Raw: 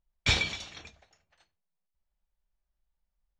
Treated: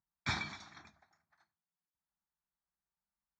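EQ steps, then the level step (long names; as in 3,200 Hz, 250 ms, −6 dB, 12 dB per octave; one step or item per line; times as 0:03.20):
band-pass filter 160–3,800 Hz
phaser with its sweep stopped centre 1,200 Hz, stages 4
−1.0 dB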